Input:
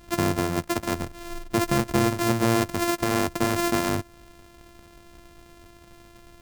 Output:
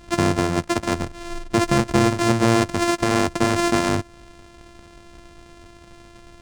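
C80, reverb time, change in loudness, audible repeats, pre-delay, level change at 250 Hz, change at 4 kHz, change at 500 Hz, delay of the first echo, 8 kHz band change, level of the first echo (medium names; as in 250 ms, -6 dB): no reverb, no reverb, +4.5 dB, no echo, no reverb, +4.5 dB, +4.5 dB, +4.5 dB, no echo, +3.0 dB, no echo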